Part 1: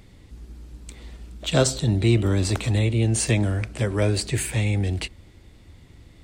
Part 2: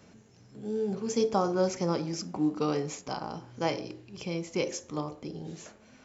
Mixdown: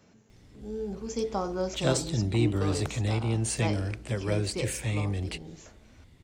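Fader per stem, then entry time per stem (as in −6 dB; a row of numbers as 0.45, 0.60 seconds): −7.0, −4.0 decibels; 0.30, 0.00 seconds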